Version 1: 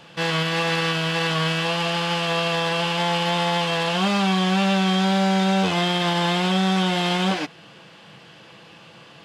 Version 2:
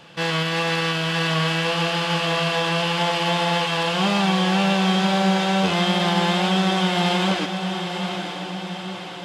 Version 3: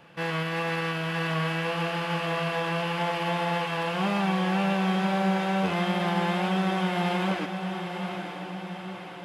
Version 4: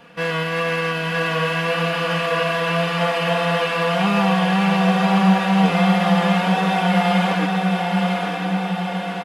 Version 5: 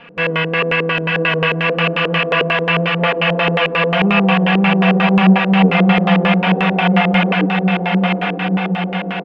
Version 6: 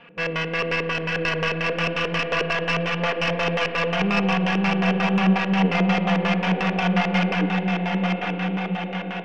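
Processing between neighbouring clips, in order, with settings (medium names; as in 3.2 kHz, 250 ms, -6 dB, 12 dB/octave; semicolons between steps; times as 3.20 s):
echo that smears into a reverb 938 ms, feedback 56%, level -7 dB
high-order bell 5.1 kHz -8.5 dB; trim -5.5 dB
comb 4.2 ms, depth 81%; echo that smears into a reverb 967 ms, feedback 56%, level -5 dB; trim +4.5 dB
LFO low-pass square 5.6 Hz 390–2600 Hz; trim +3.5 dB
tracing distortion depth 0.042 ms; on a send at -9.5 dB: reverberation RT60 3.8 s, pre-delay 33 ms; on the sum: trim -8 dB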